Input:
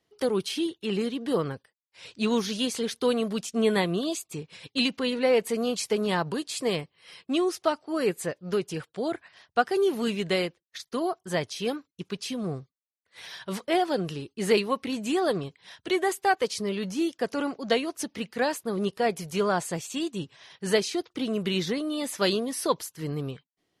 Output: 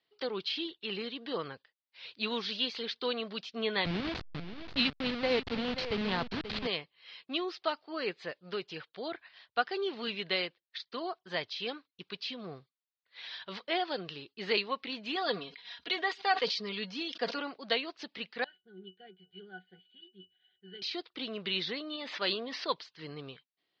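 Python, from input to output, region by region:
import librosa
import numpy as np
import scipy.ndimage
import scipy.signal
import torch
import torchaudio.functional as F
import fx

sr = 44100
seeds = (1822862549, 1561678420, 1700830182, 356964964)

y = fx.chain(x, sr, fx.delta_hold(step_db=-25.0),
    fx.bass_treble(bass_db=14, treble_db=-1),
    fx.echo_single(ms=532, db=-11.0), at=(3.85, 6.67))
y = fx.chain(y, sr, fx.high_shelf(hz=5500.0, db=5.5),
    fx.comb(ms=4.2, depth=0.61),
    fx.sustainer(db_per_s=120.0), at=(15.15, 17.39))
y = fx.chain(y, sr, fx.tilt_eq(slope=2.0),
    fx.fixed_phaser(hz=2400.0, stages=4),
    fx.octave_resonator(note='F#', decay_s=0.13), at=(18.44, 20.82))
y = fx.chain(y, sr, fx.lowpass(hz=2500.0, slope=6),
    fx.low_shelf(hz=490.0, db=-3.5),
    fx.sustainer(db_per_s=24.0), at=(21.96, 22.68))
y = scipy.signal.sosfilt(scipy.signal.butter(8, 4500.0, 'lowpass', fs=sr, output='sos'), y)
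y = fx.tilt_eq(y, sr, slope=3.5)
y = F.gain(torch.from_numpy(y), -6.0).numpy()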